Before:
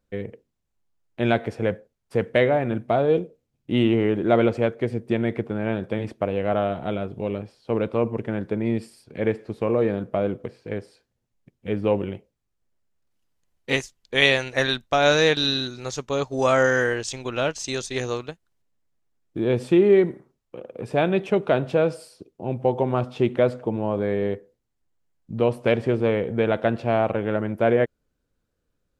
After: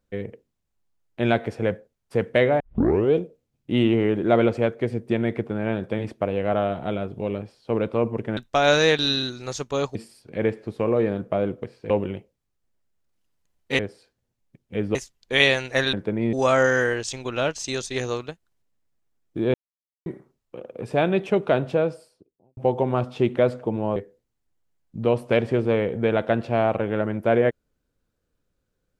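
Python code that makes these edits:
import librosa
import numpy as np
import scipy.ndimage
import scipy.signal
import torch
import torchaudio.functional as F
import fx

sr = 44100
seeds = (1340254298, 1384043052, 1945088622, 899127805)

y = fx.studio_fade_out(x, sr, start_s=21.54, length_s=1.03)
y = fx.edit(y, sr, fx.tape_start(start_s=2.6, length_s=0.54),
    fx.swap(start_s=8.37, length_s=0.4, other_s=14.75, other_length_s=1.58),
    fx.move(start_s=10.72, length_s=1.16, to_s=13.77),
    fx.silence(start_s=19.54, length_s=0.52),
    fx.cut(start_s=23.96, length_s=0.35), tone=tone)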